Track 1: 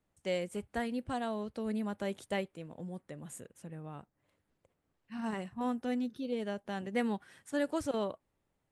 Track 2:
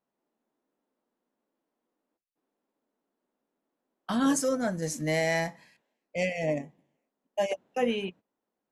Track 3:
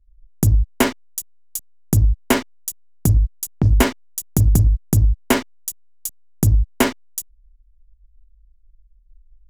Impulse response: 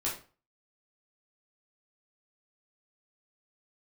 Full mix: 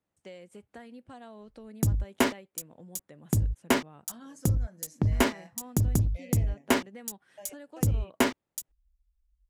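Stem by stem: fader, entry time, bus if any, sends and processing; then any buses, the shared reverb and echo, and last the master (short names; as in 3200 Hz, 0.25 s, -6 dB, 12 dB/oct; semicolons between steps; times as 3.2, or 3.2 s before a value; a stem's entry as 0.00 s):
-3.5 dB, 0.00 s, no send, compressor 4:1, threshold -41 dBFS, peak gain reduction 12 dB
-16.0 dB, 0.00 s, no send, compressor 2.5:1, threshold -31 dBFS, peak gain reduction 7 dB
-6.5 dB, 1.40 s, no send, dry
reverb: off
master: HPF 110 Hz 6 dB/oct; high shelf 9800 Hz -6 dB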